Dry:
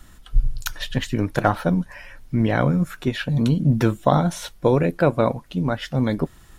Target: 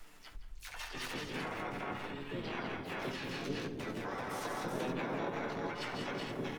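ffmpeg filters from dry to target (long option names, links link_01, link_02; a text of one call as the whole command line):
ffmpeg -i in.wav -filter_complex "[0:a]asplit=2[link_01][link_02];[link_02]adelay=68,lowpass=frequency=1500:poles=1,volume=-6dB,asplit=2[link_03][link_04];[link_04]adelay=68,lowpass=frequency=1500:poles=1,volume=0.53,asplit=2[link_05][link_06];[link_06]adelay=68,lowpass=frequency=1500:poles=1,volume=0.53,asplit=2[link_07][link_08];[link_08]adelay=68,lowpass=frequency=1500:poles=1,volume=0.53,asplit=2[link_09][link_10];[link_10]adelay=68,lowpass=frequency=1500:poles=1,volume=0.53,asplit=2[link_11][link_12];[link_12]adelay=68,lowpass=frequency=1500:poles=1,volume=0.53,asplit=2[link_13][link_14];[link_14]adelay=68,lowpass=frequency=1500:poles=1,volume=0.53[link_15];[link_03][link_05][link_07][link_09][link_11][link_13][link_15]amix=inputs=7:normalize=0[link_16];[link_01][link_16]amix=inputs=2:normalize=0,flanger=delay=8.8:depth=2.4:regen=24:speed=1.9:shape=triangular,equalizer=frequency=125:width_type=o:width=1:gain=-4,equalizer=frequency=250:width_type=o:width=1:gain=-5,equalizer=frequency=500:width_type=o:width=1:gain=-7,equalizer=frequency=2000:width_type=o:width=1:gain=6,flanger=delay=9.8:depth=2.2:regen=38:speed=0.52:shape=triangular,asplit=2[link_17][link_18];[link_18]aecho=0:1:162|199|383|444:0.596|0.355|0.596|0.335[link_19];[link_17][link_19]amix=inputs=2:normalize=0,asplit=4[link_20][link_21][link_22][link_23];[link_21]asetrate=29433,aresample=44100,atempo=1.49831,volume=-10dB[link_24];[link_22]asetrate=37084,aresample=44100,atempo=1.18921,volume=-17dB[link_25];[link_23]asetrate=52444,aresample=44100,atempo=0.840896,volume=-9dB[link_26];[link_20][link_24][link_25][link_26]amix=inputs=4:normalize=0,alimiter=limit=-21.5dB:level=0:latency=1:release=55,acompressor=threshold=-35dB:ratio=4,lowshelf=frequency=200:width_type=q:width=3:gain=-10.5,asplit=4[link_27][link_28][link_29][link_30];[link_28]asetrate=22050,aresample=44100,atempo=2,volume=-4dB[link_31];[link_29]asetrate=29433,aresample=44100,atempo=1.49831,volume=-5dB[link_32];[link_30]asetrate=66075,aresample=44100,atempo=0.66742,volume=0dB[link_33];[link_27][link_31][link_32][link_33]amix=inputs=4:normalize=0,volume=-5.5dB" out.wav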